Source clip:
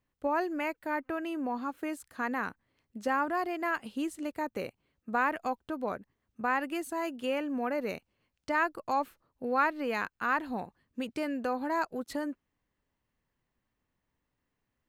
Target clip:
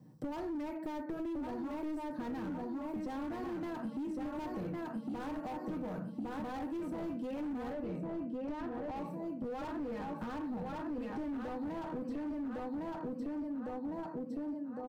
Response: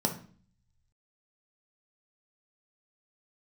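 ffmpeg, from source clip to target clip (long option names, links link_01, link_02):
-filter_complex "[0:a]aecho=1:1:1107|2214|3321|4428|5535:0.501|0.195|0.0762|0.0297|0.0116[link_01];[1:a]atrim=start_sample=2205,afade=type=out:start_time=0.19:duration=0.01,atrim=end_sample=8820[link_02];[link_01][link_02]afir=irnorm=-1:irlink=0,acrossover=split=1400|3200[link_03][link_04][link_05];[link_03]acompressor=threshold=-32dB:ratio=4[link_06];[link_04]acompressor=threshold=-38dB:ratio=4[link_07];[link_05]acompressor=threshold=-60dB:ratio=4[link_08];[link_06][link_07][link_08]amix=inputs=3:normalize=0,highpass=frequency=87:width=0.5412,highpass=frequency=87:width=1.3066,aecho=1:1:6.4:0.41,asoftclip=type=hard:threshold=-32.5dB,tiltshelf=frequency=760:gain=9,acompressor=threshold=-48dB:ratio=3,asetnsamples=nb_out_samples=441:pad=0,asendcmd='7.73 highshelf g -3.5;8.96 highshelf g 5',highshelf=frequency=5000:gain=10,volume=5.5dB"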